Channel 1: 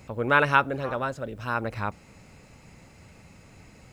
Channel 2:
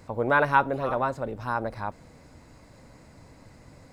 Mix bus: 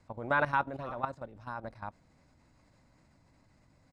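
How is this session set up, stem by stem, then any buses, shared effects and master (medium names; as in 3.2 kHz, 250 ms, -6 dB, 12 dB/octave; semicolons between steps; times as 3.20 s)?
-16.0 dB, 0.00 s, no send, four-pole ladder low-pass 720 Hz, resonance 50%
+2.0 dB, 1 ms, no send, low-pass 8.4 kHz 12 dB/octave; peaking EQ 460 Hz -7.5 dB 0.51 oct; upward expansion 1.5:1, over -37 dBFS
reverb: none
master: level held to a coarse grid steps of 13 dB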